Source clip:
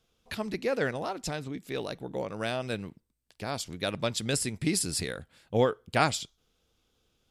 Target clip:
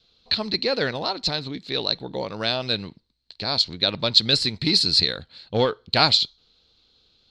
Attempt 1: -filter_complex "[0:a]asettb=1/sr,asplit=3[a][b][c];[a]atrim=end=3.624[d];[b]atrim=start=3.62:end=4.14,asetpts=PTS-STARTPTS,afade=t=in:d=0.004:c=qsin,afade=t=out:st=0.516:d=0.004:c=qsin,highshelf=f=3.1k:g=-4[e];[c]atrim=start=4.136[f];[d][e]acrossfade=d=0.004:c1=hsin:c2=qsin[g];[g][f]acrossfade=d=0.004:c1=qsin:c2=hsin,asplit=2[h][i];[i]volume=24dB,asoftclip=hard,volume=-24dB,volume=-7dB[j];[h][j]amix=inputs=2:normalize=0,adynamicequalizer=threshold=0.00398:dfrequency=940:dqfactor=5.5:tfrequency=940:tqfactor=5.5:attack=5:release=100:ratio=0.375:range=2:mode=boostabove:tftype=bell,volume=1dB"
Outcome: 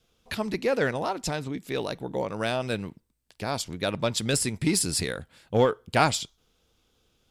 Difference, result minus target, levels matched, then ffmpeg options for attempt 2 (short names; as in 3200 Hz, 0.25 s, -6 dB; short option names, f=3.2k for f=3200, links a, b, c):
4000 Hz band -8.5 dB
-filter_complex "[0:a]asettb=1/sr,asplit=3[a][b][c];[a]atrim=end=3.624[d];[b]atrim=start=3.62:end=4.14,asetpts=PTS-STARTPTS,afade=t=in:d=0.004:c=qsin,afade=t=out:st=0.516:d=0.004:c=qsin,highshelf=f=3.1k:g=-4[e];[c]atrim=start=4.136[f];[d][e]acrossfade=d=0.004:c1=hsin:c2=qsin[g];[g][f]acrossfade=d=0.004:c1=qsin:c2=hsin,asplit=2[h][i];[i]volume=24dB,asoftclip=hard,volume=-24dB,volume=-7dB[j];[h][j]amix=inputs=2:normalize=0,adynamicequalizer=threshold=0.00398:dfrequency=940:dqfactor=5.5:tfrequency=940:tqfactor=5.5:attack=5:release=100:ratio=0.375:range=2:mode=boostabove:tftype=bell,lowpass=f=4.2k:t=q:w=15,volume=1dB"